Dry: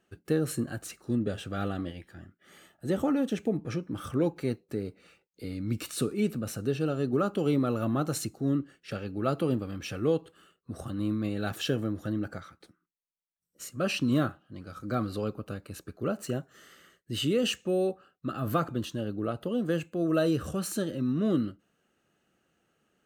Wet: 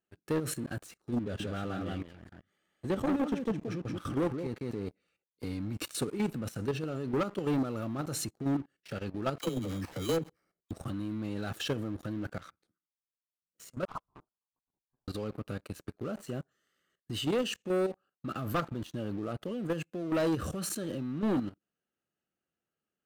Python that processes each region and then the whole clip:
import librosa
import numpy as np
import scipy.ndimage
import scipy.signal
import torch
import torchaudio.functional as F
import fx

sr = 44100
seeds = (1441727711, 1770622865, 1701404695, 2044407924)

y = fx.chain(x, sr, fx.high_shelf(hz=6500.0, db=-7.0),
    fx.echo_single(ms=179, db=-5.0), at=(1.22, 4.87))
y = fx.chain(y, sr, fx.high_shelf(hz=4200.0, db=-11.5),
    fx.sample_hold(seeds[0], rate_hz=3500.0, jitter_pct=0),
    fx.dispersion(late='lows', ms=60.0, hz=560.0), at=(9.38, 10.71))
y = fx.chain(y, sr, fx.steep_highpass(hz=2900.0, slope=72),
    fx.freq_invert(carrier_hz=4000),
    fx.upward_expand(threshold_db=-58.0, expansion=1.5), at=(13.85, 15.08))
y = fx.high_shelf(y, sr, hz=11000.0, db=-2.5)
y = fx.level_steps(y, sr, step_db=13)
y = fx.leveller(y, sr, passes=3)
y = F.gain(torch.from_numpy(y), -7.5).numpy()